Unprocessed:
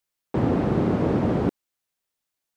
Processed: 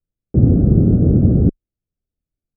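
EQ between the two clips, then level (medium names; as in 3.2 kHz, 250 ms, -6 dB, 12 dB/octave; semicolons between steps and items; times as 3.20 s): boxcar filter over 45 samples; tilt EQ -4 dB/octave; bass shelf 190 Hz +5 dB; -1.5 dB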